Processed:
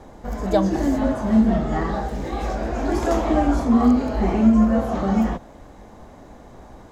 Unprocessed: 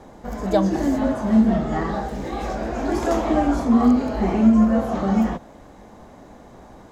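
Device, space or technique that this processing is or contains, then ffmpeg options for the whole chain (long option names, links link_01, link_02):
low shelf boost with a cut just above: -af "lowshelf=frequency=92:gain=6.5,equalizer=frequency=190:width_type=o:width=0.77:gain=-2"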